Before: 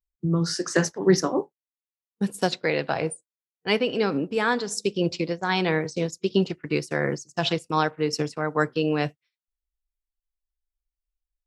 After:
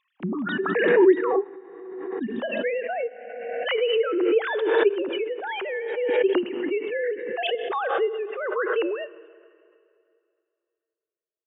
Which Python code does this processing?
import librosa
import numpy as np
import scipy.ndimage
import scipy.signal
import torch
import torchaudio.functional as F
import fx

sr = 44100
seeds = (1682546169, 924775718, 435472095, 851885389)

y = fx.sine_speech(x, sr)
y = fx.low_shelf(y, sr, hz=330.0, db=11.5, at=(6.94, 7.55))
y = fx.rev_plate(y, sr, seeds[0], rt60_s=2.5, hf_ratio=0.9, predelay_ms=0, drr_db=16.5)
y = fx.pre_swell(y, sr, db_per_s=32.0)
y = y * 10.0 ** (-2.5 / 20.0)